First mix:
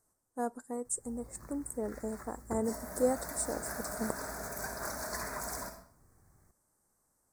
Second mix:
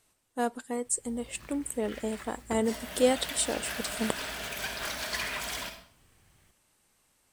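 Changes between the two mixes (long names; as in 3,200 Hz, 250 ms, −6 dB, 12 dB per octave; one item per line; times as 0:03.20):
speech +5.0 dB
master: remove Butterworth band-reject 3,000 Hz, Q 0.64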